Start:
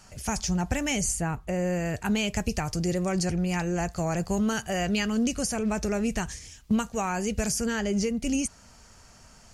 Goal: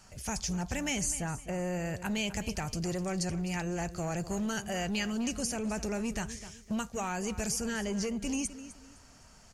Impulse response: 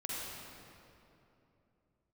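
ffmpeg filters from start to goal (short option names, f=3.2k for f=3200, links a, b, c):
-filter_complex "[0:a]aecho=1:1:255|510|765:0.168|0.0487|0.0141,acrossover=split=1700[a][b];[a]asoftclip=type=tanh:threshold=-24.5dB[c];[c][b]amix=inputs=2:normalize=0,volume=-4dB"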